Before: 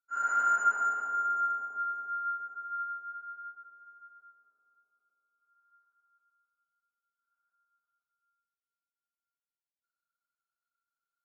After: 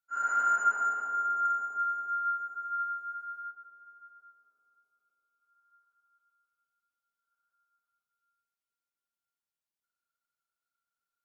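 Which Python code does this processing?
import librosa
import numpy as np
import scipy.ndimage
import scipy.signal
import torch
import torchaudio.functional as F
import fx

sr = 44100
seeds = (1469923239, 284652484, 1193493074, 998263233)

y = fx.high_shelf(x, sr, hz=2400.0, db=11.0, at=(1.45, 3.51))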